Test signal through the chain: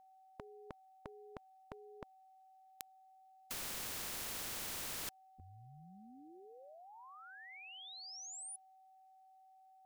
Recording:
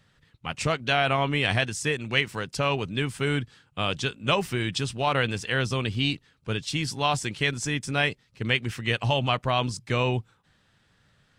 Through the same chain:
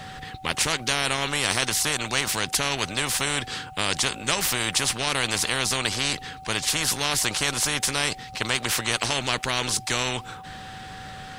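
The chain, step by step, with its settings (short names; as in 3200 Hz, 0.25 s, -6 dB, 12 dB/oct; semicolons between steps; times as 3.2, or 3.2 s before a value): whine 760 Hz -49 dBFS; spectral compressor 4:1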